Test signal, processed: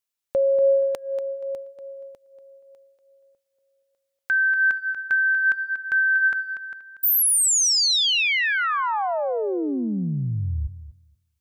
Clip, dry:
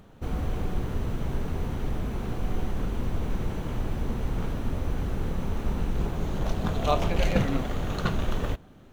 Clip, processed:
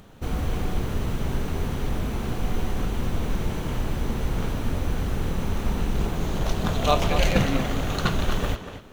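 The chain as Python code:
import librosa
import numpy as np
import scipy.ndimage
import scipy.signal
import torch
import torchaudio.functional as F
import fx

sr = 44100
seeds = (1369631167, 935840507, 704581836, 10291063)

p1 = fx.high_shelf(x, sr, hz=2100.0, db=6.5)
p2 = p1 + fx.echo_tape(p1, sr, ms=238, feedback_pct=26, wet_db=-8.5, lp_hz=5100.0, drive_db=6.0, wow_cents=10, dry=0)
y = F.gain(torch.from_numpy(p2), 2.5).numpy()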